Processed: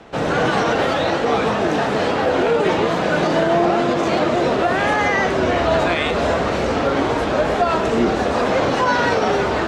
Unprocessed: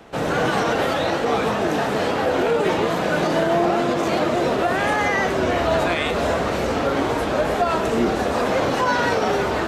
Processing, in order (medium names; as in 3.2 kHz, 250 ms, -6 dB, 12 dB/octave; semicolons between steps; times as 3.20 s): low-pass 7 kHz 12 dB/octave; trim +2.5 dB